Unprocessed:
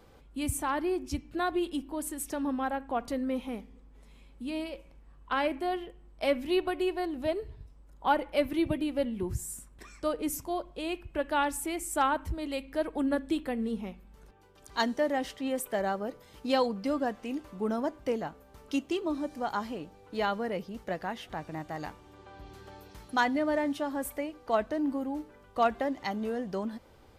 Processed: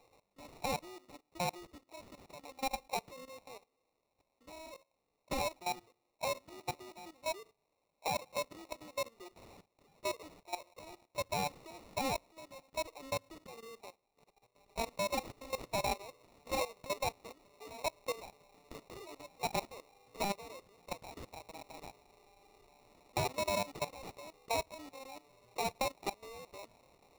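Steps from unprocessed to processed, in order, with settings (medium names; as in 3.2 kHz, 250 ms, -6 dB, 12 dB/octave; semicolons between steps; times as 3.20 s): high-pass 500 Hz 24 dB/octave; level held to a coarse grid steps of 16 dB; treble shelf 2.8 kHz -8.5 dB, from 14.87 s +3 dB; sample-rate reducer 1.6 kHz, jitter 0%; peaking EQ 4.6 kHz +3.5 dB 0.87 oct; trim -1 dB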